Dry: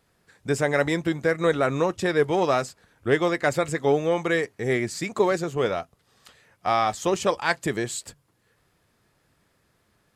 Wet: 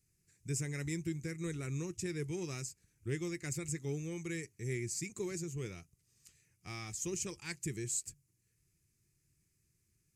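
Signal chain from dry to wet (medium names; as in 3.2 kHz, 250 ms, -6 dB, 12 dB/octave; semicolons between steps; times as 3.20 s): FFT filter 150 Hz 0 dB, 250 Hz -12 dB, 350 Hz -6 dB, 610 Hz -29 dB, 1.6 kHz -18 dB, 2.4 kHz -5 dB, 3.4 kHz -16 dB, 6.4 kHz +5 dB, 12 kHz +1 dB; trim -6.5 dB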